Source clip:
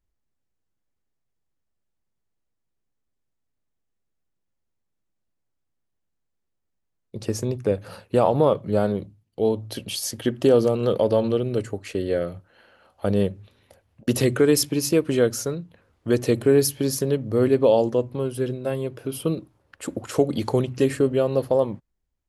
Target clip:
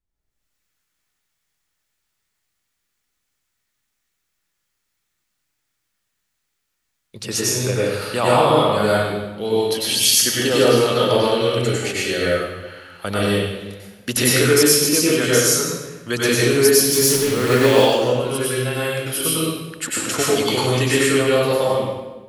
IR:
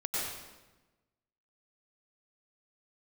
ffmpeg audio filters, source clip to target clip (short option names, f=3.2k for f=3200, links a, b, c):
-filter_complex "[0:a]asettb=1/sr,asplit=3[a][b][c];[a]atrim=end=16.834[d];[b]atrim=start=16.83:end=17.72,asetpts=PTS-STARTPTS,afade=t=in:d=0.004:c=qsin,afade=t=out:st=0.886:d=0.004:c=qsin,aeval=exprs='val(0)+0.5*0.0282*sgn(val(0))':c=same[e];[c]atrim=start=17.716[f];[d][e]acrossfade=d=0.004:c1=hsin:c2=qsin[g];[g][f]acrossfade=d=0.004:c1=qsin:c2=hsin,acrossover=split=670|1200[h][i][j];[j]dynaudnorm=f=130:g=5:m=16dB[k];[h][i][k]amix=inputs=3:normalize=0[l];[1:a]atrim=start_sample=2205[m];[l][m]afir=irnorm=-1:irlink=0,volume=-3.5dB"